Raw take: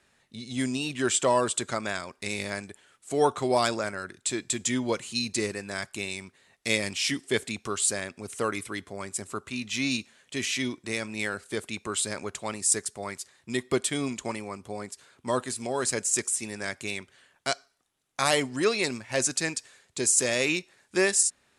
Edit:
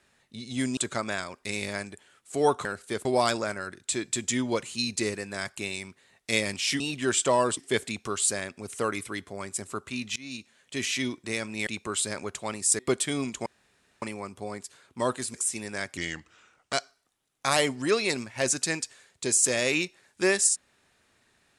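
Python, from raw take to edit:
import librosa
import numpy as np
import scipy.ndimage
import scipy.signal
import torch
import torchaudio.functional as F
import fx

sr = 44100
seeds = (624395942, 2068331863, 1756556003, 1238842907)

y = fx.edit(x, sr, fx.move(start_s=0.77, length_s=0.77, to_s=7.17),
    fx.fade_in_from(start_s=9.76, length_s=0.64, floor_db=-23.0),
    fx.move(start_s=11.27, length_s=0.4, to_s=3.42),
    fx.cut(start_s=12.79, length_s=0.84),
    fx.insert_room_tone(at_s=14.3, length_s=0.56),
    fx.cut(start_s=15.62, length_s=0.59),
    fx.speed_span(start_s=16.84, length_s=0.63, speed=0.83), tone=tone)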